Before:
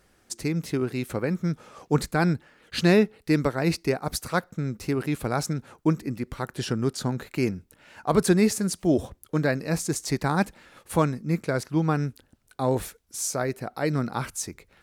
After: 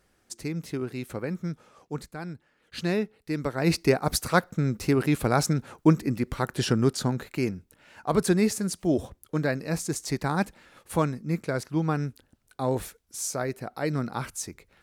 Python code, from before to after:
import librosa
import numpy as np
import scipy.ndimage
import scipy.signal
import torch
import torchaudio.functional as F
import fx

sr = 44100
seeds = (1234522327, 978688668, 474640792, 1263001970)

y = fx.gain(x, sr, db=fx.line((1.43, -5.0), (2.24, -15.0), (2.78, -8.0), (3.35, -8.0), (3.78, 3.5), (6.8, 3.5), (7.46, -2.5)))